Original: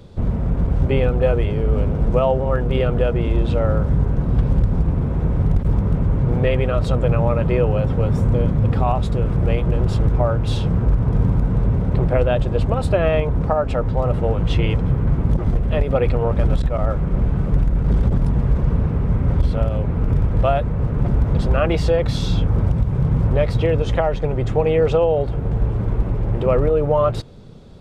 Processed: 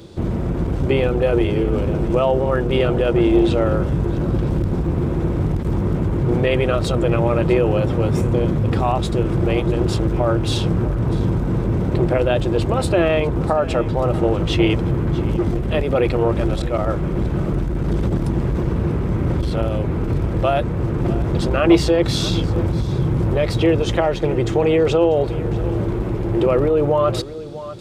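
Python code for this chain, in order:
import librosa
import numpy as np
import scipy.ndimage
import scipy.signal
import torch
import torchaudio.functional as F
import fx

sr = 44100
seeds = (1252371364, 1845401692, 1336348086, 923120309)

p1 = fx.highpass(x, sr, hz=94.0, slope=6)
p2 = fx.high_shelf(p1, sr, hz=2600.0, db=8.5)
p3 = p2 + 10.0 ** (-17.5 / 20.0) * np.pad(p2, (int(644 * sr / 1000.0), 0))[:len(p2)]
p4 = fx.over_compress(p3, sr, threshold_db=-19.0, ratio=-1.0)
p5 = p3 + (p4 * librosa.db_to_amplitude(-1.5))
p6 = fx.peak_eq(p5, sr, hz=340.0, db=14.5, octaves=0.22)
p7 = fx.transformer_sat(p6, sr, knee_hz=250.0)
y = p7 * librosa.db_to_amplitude(-3.5)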